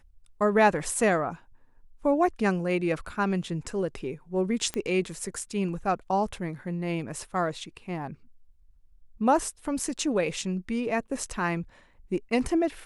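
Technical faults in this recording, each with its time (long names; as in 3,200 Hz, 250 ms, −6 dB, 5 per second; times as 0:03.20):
0:04.74: click −16 dBFS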